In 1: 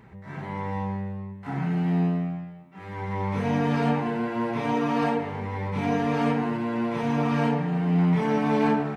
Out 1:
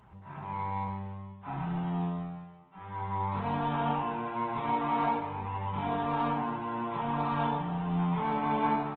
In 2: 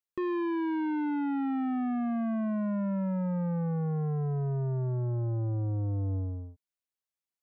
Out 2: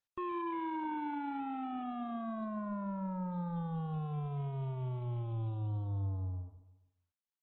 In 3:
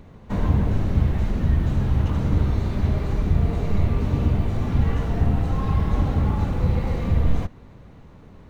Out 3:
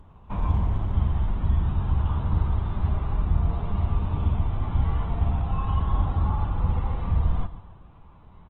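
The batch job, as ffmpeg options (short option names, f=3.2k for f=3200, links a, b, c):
-filter_complex "[0:a]equalizer=f=125:t=o:w=1:g=-5,equalizer=f=250:t=o:w=1:g=-8,equalizer=f=500:t=o:w=1:g=-10,equalizer=f=1k:t=o:w=1:g=7,equalizer=f=2k:t=o:w=1:g=-10,asplit=2[a][b];[b]acrusher=samples=11:mix=1:aa=0.000001:lfo=1:lforange=6.6:lforate=0.26,volume=-9.5dB[c];[a][c]amix=inputs=2:normalize=0,aecho=1:1:140|280|420|560:0.178|0.0818|0.0376|0.0173,aresample=8000,aresample=44100,volume=-3dB" -ar 48000 -c:a libopus -b:a 16k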